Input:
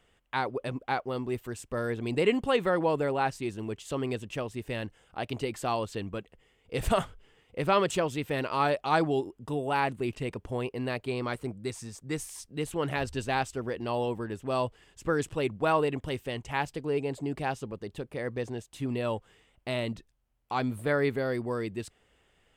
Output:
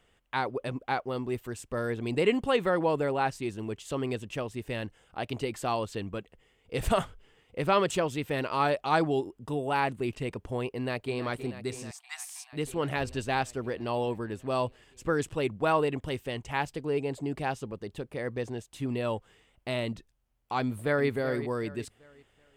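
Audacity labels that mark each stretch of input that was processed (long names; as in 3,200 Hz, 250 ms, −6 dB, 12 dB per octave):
10.750000	11.190000	delay throw 320 ms, feedback 80%, level −11.5 dB
11.910000	12.530000	linear-phase brick-wall high-pass 660 Hz
20.600000	21.080000	delay throw 380 ms, feedback 35%, level −12 dB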